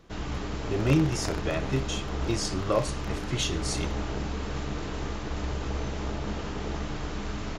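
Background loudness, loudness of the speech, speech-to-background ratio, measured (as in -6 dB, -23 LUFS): -34.0 LUFS, -29.5 LUFS, 4.5 dB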